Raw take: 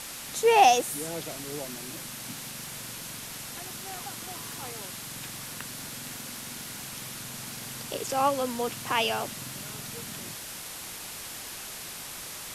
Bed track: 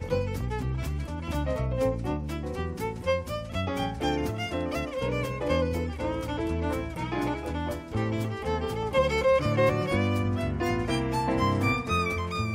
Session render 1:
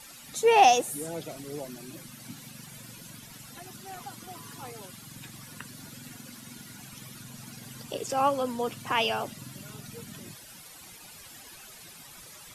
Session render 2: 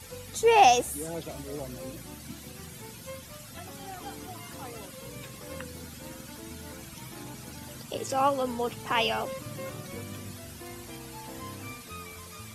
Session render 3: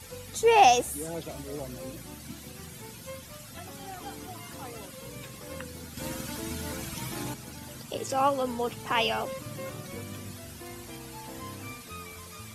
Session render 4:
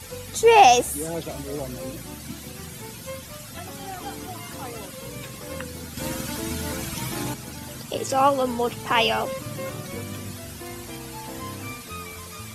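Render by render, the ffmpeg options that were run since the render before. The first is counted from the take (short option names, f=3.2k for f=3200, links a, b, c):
-af "afftdn=nr=13:nf=-40"
-filter_complex "[1:a]volume=-16.5dB[a];[0:a][a]amix=inputs=2:normalize=0"
-filter_complex "[0:a]asettb=1/sr,asplit=3[a][b][c];[a]atrim=end=5.974[d];[b]atrim=start=5.97:end=7.34,asetpts=PTS-STARTPTS,afade=t=in:d=0.004:c=qsin,afade=t=out:st=1.366:d=0.004:c=qsin,acontrast=78[e];[c]atrim=start=7.336[f];[d][e]acrossfade=d=0.004:c1=hsin:c2=qsin[g];[g][f]acrossfade=d=0.004:c1=qsin:c2=hsin"
-af "volume=6dB,alimiter=limit=-3dB:level=0:latency=1"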